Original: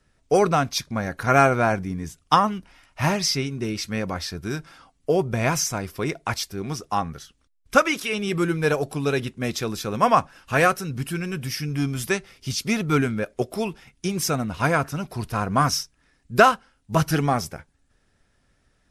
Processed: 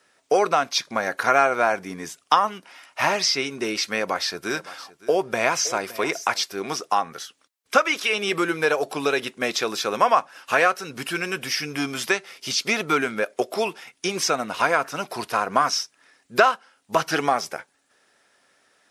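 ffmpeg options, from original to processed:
ffmpeg -i in.wav -filter_complex "[0:a]asettb=1/sr,asplit=3[link_01][link_02][link_03];[link_01]atrim=end=3.914[link_04];[link_02]atrim=start=3.91:end=6.55,asetpts=PTS-STARTPTS,afade=type=in:duration=0.004:curve=qsin,afade=type=out:start_time=2.636:duration=0.004:curve=qsin,aecho=1:1:565:0.112,atrim=end_sample=116424[link_05];[link_03]atrim=start=6.546[link_06];[link_04][link_05]acrossfade=duration=0.004:curve1=hsin:curve2=qsin[link_07];[link_07][link_06]acrossfade=duration=0.004:curve1=qsin:curve2=hsin,acrossover=split=6200[link_08][link_09];[link_09]acompressor=threshold=-47dB:ratio=4:attack=1:release=60[link_10];[link_08][link_10]amix=inputs=2:normalize=0,highpass=470,acompressor=threshold=-29dB:ratio=2,volume=8.5dB" out.wav

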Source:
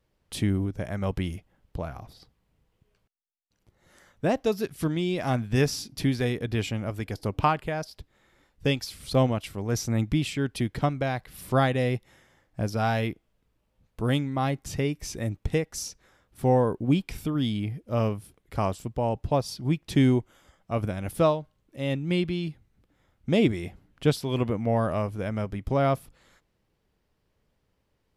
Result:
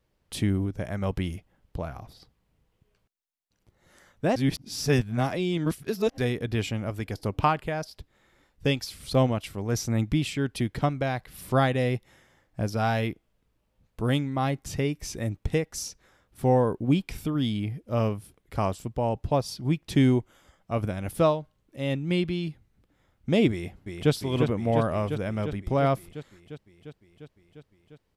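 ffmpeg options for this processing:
ffmpeg -i in.wav -filter_complex "[0:a]asplit=2[link_01][link_02];[link_02]afade=type=in:start_time=23.51:duration=0.01,afade=type=out:start_time=24.12:duration=0.01,aecho=0:1:350|700|1050|1400|1750|2100|2450|2800|3150|3500|3850|4200:0.595662|0.446747|0.33506|0.251295|0.188471|0.141353|0.106015|0.0795113|0.0596335|0.0447251|0.0335438|0.0251579[link_03];[link_01][link_03]amix=inputs=2:normalize=0,asplit=3[link_04][link_05][link_06];[link_04]atrim=end=4.362[link_07];[link_05]atrim=start=4.358:end=6.182,asetpts=PTS-STARTPTS,areverse[link_08];[link_06]atrim=start=6.178[link_09];[link_07][link_08]acrossfade=duration=0.004:curve1=hsin:curve2=hsin[link_10];[link_10][link_09]acrossfade=duration=0.004:curve1=hsin:curve2=hsin" out.wav

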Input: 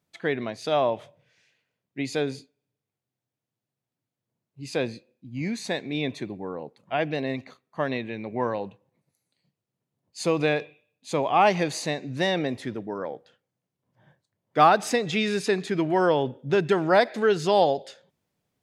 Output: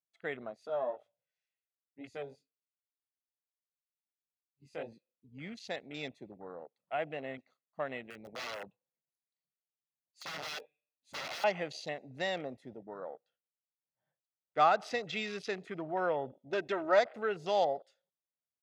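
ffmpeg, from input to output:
ffmpeg -i in.wav -filter_complex "[0:a]asettb=1/sr,asplit=3[link_01][link_02][link_03];[link_01]atrim=end=0.674[link_04];[link_02]atrim=start=0.67:end=4.92,asetpts=PTS-STARTPTS,afade=type=in:duration=0.004:curve=qsin,afade=type=out:start_time=4.246:duration=0.004:curve=qsin,flanger=delay=17:depth=3.4:speed=2.1[link_05];[link_03]atrim=start=4.916[link_06];[link_04][link_05]acrossfade=duration=0.004:curve1=hsin:curve2=qsin[link_07];[link_07][link_06]acrossfade=duration=0.004:curve1=qsin:curve2=hsin,asettb=1/sr,asplit=3[link_08][link_09][link_10];[link_08]atrim=end=8.104[link_11];[link_09]atrim=start=8.1:end=11.44,asetpts=PTS-STARTPTS,afade=type=in:duration=0.004:curve=qsin,afade=type=out:start_time=3.336:duration=0.004:curve=qsin,aeval=exprs='(mod(17.8*val(0)+1,2)-1)/17.8':channel_layout=same[link_12];[link_10]atrim=start=11.436[link_13];[link_11][link_12]acrossfade=duration=0.004:curve1=hsin:curve2=qsin[link_14];[link_14][link_13]acrossfade=duration=0.004:curve1=qsin:curve2=hsin,asettb=1/sr,asplit=3[link_15][link_16][link_17];[link_15]atrim=end=16.314[link_18];[link_16]atrim=start=16.31:end=16.99,asetpts=PTS-STARTPTS,afade=type=in:duration=0.004:curve=qsin,afade=type=out:start_time=0.676:duration=0.004:curve=qsin,aecho=1:1:3.2:0.69,atrim=end_sample=29988[link_19];[link_17]atrim=start=16.986[link_20];[link_18][link_19]acrossfade=duration=0.004:curve1=hsin:curve2=qsin[link_21];[link_21][link_20]acrossfade=duration=0.004:curve1=qsin:curve2=hsin,highpass=frequency=390:poles=1,afwtdn=0.0141,aecho=1:1:1.5:0.35,volume=-9dB" out.wav

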